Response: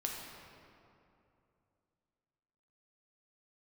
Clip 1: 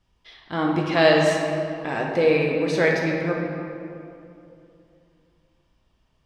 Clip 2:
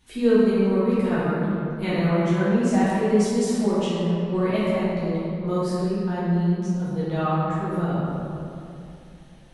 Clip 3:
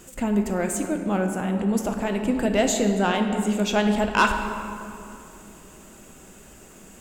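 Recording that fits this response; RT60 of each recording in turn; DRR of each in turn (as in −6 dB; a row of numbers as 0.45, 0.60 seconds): 1; 2.7, 2.7, 2.7 seconds; −1.0, −10.0, 4.0 decibels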